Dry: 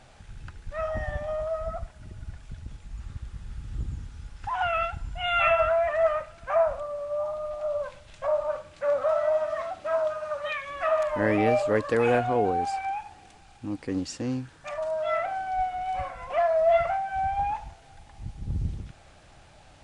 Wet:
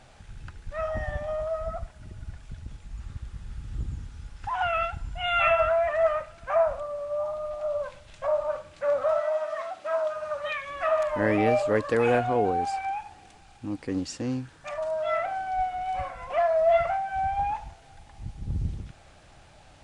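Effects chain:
0:09.20–0:10.15: high-pass filter 670 Hz → 320 Hz 6 dB per octave

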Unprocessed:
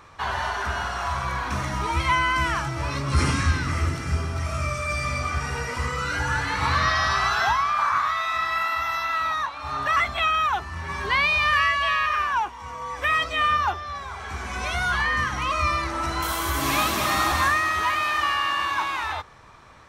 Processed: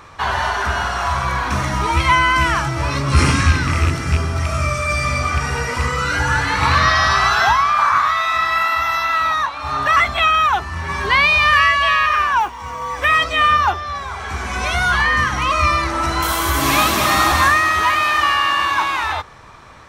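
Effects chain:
loose part that buzzes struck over −21 dBFS, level −20 dBFS
0:12.39–0:13.01: noise that follows the level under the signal 33 dB
level +7.5 dB

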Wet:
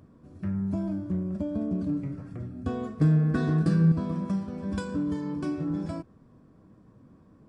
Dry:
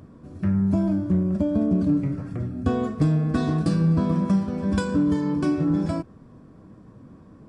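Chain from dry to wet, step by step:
0:03.01–0:03.92: graphic EQ with 15 bands 160 Hz +8 dB, 400 Hz +7 dB, 1,600 Hz +9 dB
level −8 dB

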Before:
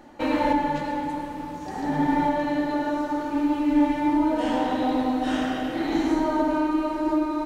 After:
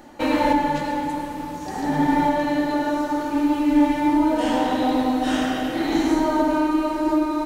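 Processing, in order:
high-shelf EQ 5,400 Hz +8 dB
level +3 dB

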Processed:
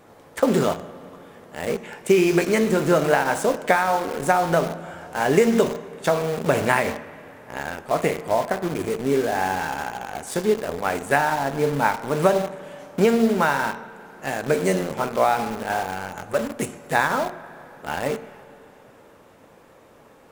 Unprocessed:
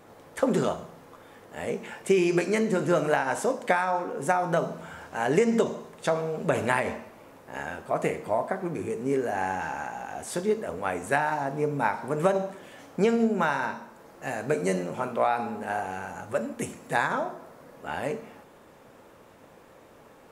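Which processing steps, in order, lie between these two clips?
in parallel at −5.5 dB: bit reduction 5 bits
on the sum: spring reverb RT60 3.4 s, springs 33/42/50 ms, chirp 45 ms, DRR 16.5 dB
level +1.5 dB

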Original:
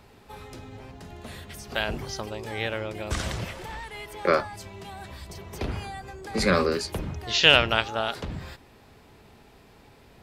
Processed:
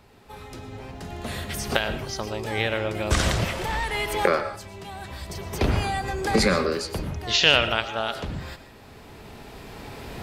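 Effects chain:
camcorder AGC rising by 7.5 dB per second
on a send: convolution reverb RT60 0.35 s, pre-delay 79 ms, DRR 11 dB
on the sum: level −1.5 dB

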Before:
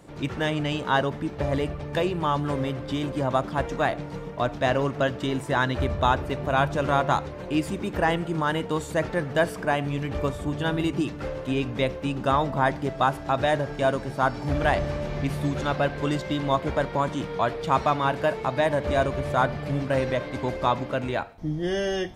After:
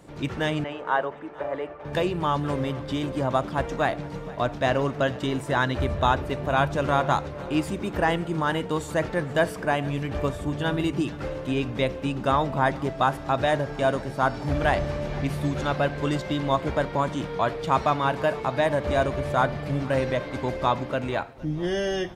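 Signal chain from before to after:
0:00.64–0:01.85: three-way crossover with the lows and the highs turned down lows −23 dB, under 370 Hz, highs −21 dB, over 2,200 Hz
repeating echo 465 ms, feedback 51%, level −21 dB

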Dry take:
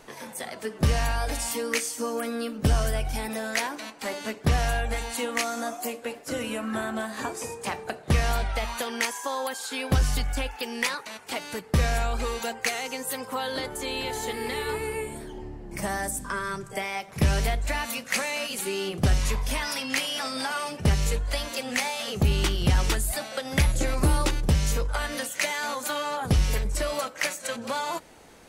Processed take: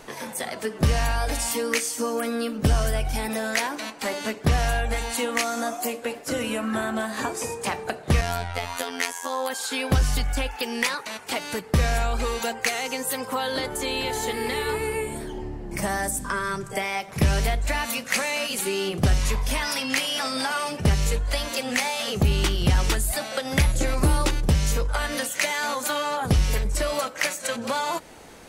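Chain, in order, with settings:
in parallel at −1 dB: downward compressor, threshold −32 dBFS, peak gain reduction 14 dB
0:08.21–0:09.50: on the sum: phases set to zero 87 Hz

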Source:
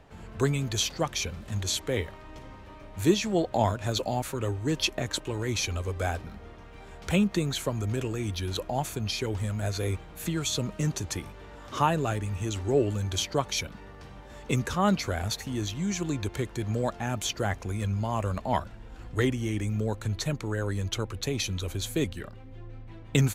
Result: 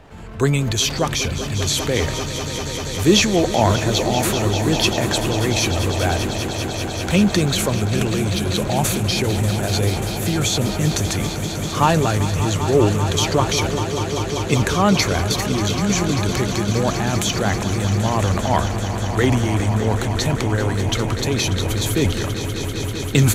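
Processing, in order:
transient designer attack −1 dB, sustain +8 dB
echo that builds up and dies away 196 ms, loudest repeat 5, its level −12.5 dB
level +8 dB

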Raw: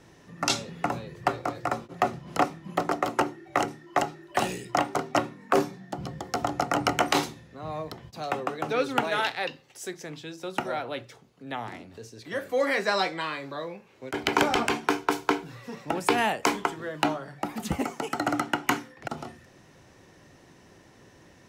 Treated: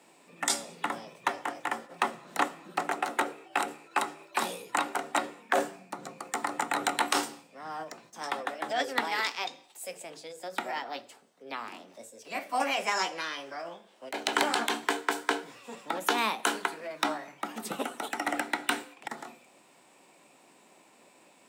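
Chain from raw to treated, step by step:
high-pass filter 210 Hz 24 dB per octave
parametric band 6,100 Hz +5.5 dB 0.26 octaves
mains-hum notches 50/100/150/200/250/300/350 Hz
formants moved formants +5 semitones
on a send: convolution reverb, pre-delay 3 ms, DRR 19 dB
on the sum: level −3.5 dB

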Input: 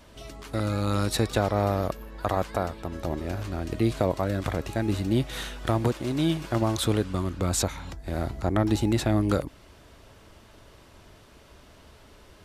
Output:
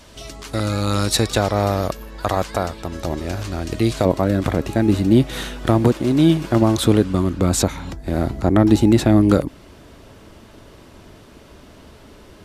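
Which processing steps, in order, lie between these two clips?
parametric band 6,100 Hz +6.5 dB 1.9 octaves, from 0:04.05 250 Hz
level +5.5 dB

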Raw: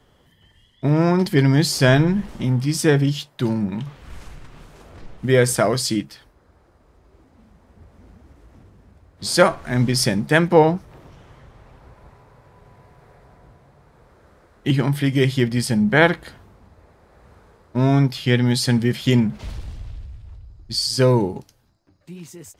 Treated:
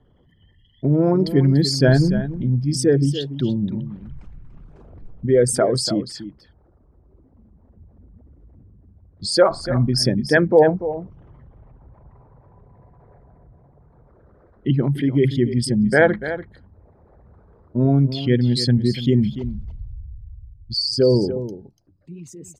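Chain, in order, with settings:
spectral envelope exaggerated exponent 2
single-tap delay 290 ms −12 dB

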